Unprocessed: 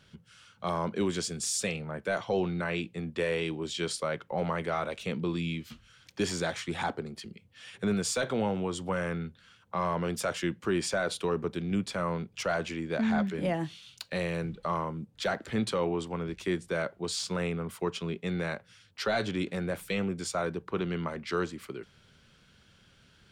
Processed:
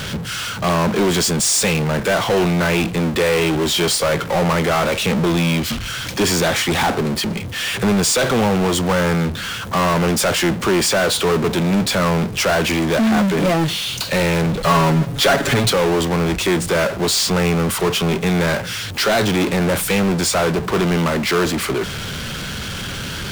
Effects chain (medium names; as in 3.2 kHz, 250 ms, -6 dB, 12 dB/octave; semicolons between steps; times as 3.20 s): power-law waveshaper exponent 0.35; 14.63–15.70 s: comb 7.2 ms, depth 93%; trim +8 dB